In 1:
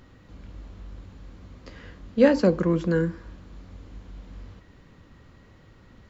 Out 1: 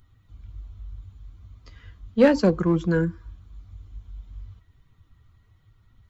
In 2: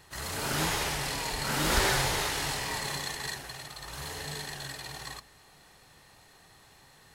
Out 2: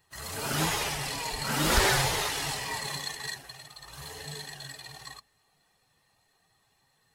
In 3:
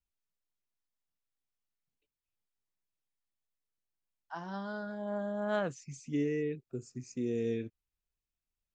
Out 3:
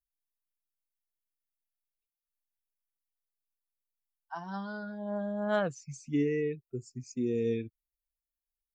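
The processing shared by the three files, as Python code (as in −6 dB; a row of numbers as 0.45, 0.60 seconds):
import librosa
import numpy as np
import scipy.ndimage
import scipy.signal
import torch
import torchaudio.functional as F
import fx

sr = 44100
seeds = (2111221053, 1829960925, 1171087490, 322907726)

p1 = fx.bin_expand(x, sr, power=1.5)
p2 = np.clip(p1, -10.0 ** (-21.5 / 20.0), 10.0 ** (-21.5 / 20.0))
y = p1 + F.gain(torch.from_numpy(p2), -4.0).numpy()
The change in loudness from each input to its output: +1.0, +1.5, +2.5 LU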